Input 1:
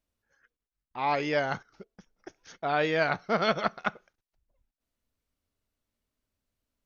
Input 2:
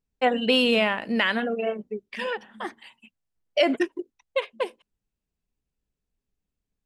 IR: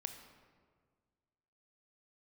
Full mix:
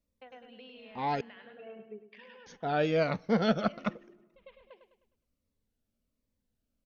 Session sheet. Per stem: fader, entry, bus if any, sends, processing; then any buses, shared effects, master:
-4.5 dB, 0.00 s, muted 1.21–2.46 s, send -19 dB, no echo send, bass shelf 120 Hz +7 dB; small resonant body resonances 220/500 Hz, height 9 dB, ringing for 25 ms; Shepard-style phaser falling 1.3 Hz
-10.5 dB, 0.00 s, no send, echo send -11.5 dB, low-pass 4.3 kHz 24 dB/octave; hum notches 60/120/180/240/300/360 Hz; compression 3:1, threshold -30 dBFS, peak gain reduction 11 dB; auto duck -22 dB, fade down 0.45 s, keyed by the first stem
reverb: on, RT60 1.7 s, pre-delay 20 ms
echo: feedback delay 103 ms, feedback 41%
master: none

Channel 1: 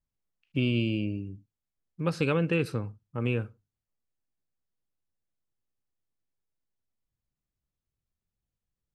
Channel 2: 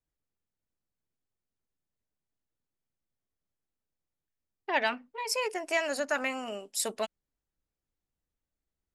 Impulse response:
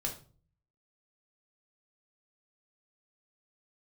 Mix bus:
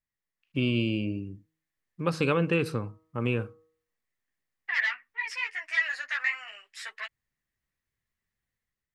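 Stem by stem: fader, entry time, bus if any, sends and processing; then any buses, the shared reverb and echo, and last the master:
-5.0 dB, 0.00 s, no send, de-hum 159 Hz, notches 8
-4.5 dB, 0.00 s, no send, sine folder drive 10 dB, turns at -14.5 dBFS; ladder band-pass 2 kHz, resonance 75%; three-phase chorus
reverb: none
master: bass shelf 130 Hz -5 dB; level rider gain up to 7 dB; peaking EQ 1.1 kHz +4.5 dB 0.29 oct

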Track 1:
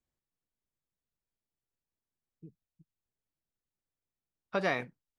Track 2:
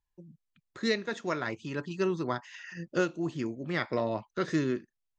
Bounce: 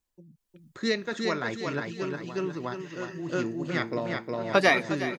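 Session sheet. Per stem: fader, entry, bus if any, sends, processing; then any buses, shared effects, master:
+0.5 dB, 0.00 s, no send, echo send -12.5 dB, level rider gain up to 6 dB; high-pass 180 Hz; reverb removal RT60 1.6 s
-2.0 dB, 0.00 s, no send, echo send -4 dB, treble shelf 2.9 kHz -6.5 dB; auto duck -16 dB, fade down 0.65 s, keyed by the first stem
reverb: none
echo: feedback delay 361 ms, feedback 41%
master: treble shelf 3.5 kHz +8 dB; level rider gain up to 3.5 dB

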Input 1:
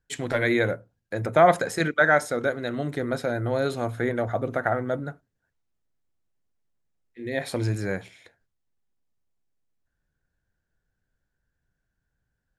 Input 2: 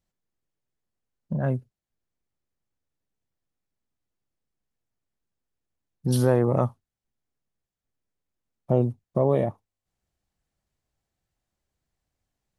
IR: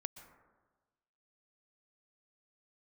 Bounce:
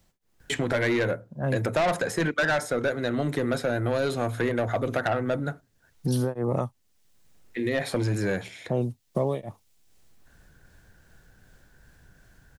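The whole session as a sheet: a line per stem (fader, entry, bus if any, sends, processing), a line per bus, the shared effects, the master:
+2.0 dB, 0.40 s, no send, saturation -20 dBFS, distortion -8 dB
-3.5 dB, 0.00 s, no send, tremolo of two beating tones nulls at 2.6 Hz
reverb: none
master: three bands compressed up and down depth 70%

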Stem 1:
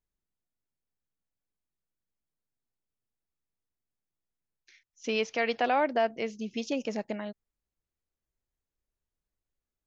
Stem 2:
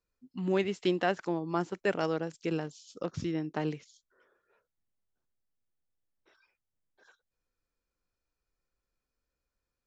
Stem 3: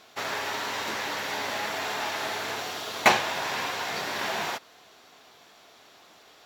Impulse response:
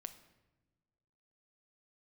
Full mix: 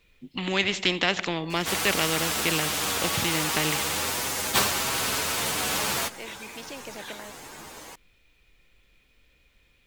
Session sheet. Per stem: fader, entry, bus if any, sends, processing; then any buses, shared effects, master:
-18.5 dB, 0.00 s, no send, high-pass 410 Hz
-2.0 dB, 0.00 s, send -6.5 dB, de-esser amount 85%; high-order bell 2.7 kHz +15 dB 1.2 oct
-1.5 dB, 1.50 s, no send, frequency axis rescaled in octaves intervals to 125%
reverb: on, pre-delay 7 ms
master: bass shelf 400 Hz +6.5 dB; spectrum-flattening compressor 2:1

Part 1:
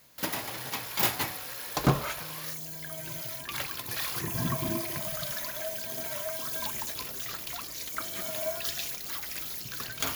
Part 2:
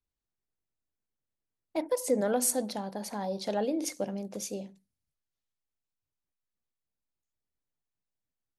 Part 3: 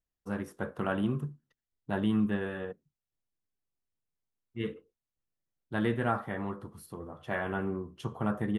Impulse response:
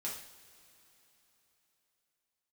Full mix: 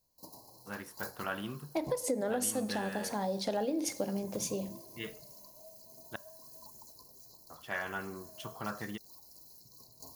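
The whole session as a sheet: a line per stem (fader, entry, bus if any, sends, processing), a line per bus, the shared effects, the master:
-18.0 dB, 0.00 s, no send, FFT band-reject 1.1–3.9 kHz; modulation noise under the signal 30 dB
+0.5 dB, 0.00 s, send -11 dB, none
-5.0 dB, 0.40 s, muted 6.16–7.50 s, send -21 dB, tilt shelf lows -7.5 dB, about 810 Hz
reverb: on, pre-delay 3 ms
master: compression 6:1, threshold -29 dBFS, peak gain reduction 9.5 dB

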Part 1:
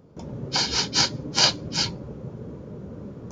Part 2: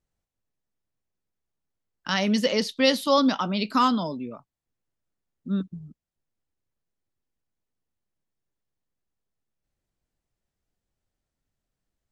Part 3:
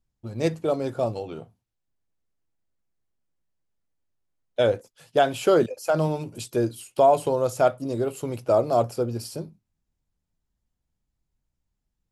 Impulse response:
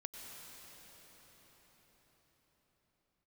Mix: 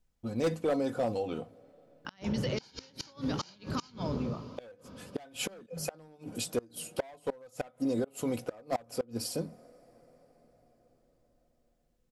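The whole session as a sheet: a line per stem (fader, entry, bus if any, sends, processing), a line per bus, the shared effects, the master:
+1.5 dB, 2.05 s, send -22.5 dB, de-hum 186 Hz, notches 14; compression 2.5:1, threshold -30 dBFS, peak gain reduction 11 dB; auto duck -20 dB, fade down 0.30 s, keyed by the third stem
-3.0 dB, 0.00 s, send -9 dB, compression 5:1, threshold -29 dBFS, peak gain reduction 13 dB
-0.5 dB, 0.00 s, send -23.5 dB, comb 4 ms, depth 56%; overload inside the chain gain 18 dB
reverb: on, RT60 5.9 s, pre-delay 87 ms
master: inverted gate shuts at -18 dBFS, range -29 dB; peak limiter -23 dBFS, peak gain reduction 7.5 dB

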